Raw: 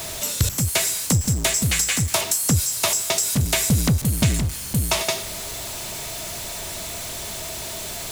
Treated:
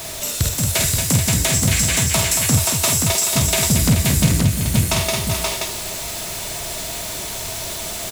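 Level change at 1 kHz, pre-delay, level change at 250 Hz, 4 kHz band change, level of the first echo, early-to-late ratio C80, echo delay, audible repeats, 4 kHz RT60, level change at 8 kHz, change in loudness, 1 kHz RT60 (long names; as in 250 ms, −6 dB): +3.5 dB, no reverb audible, +4.0 dB, +4.0 dB, −4.5 dB, no reverb audible, 49 ms, 5, no reverb audible, +4.0 dB, +4.0 dB, no reverb audible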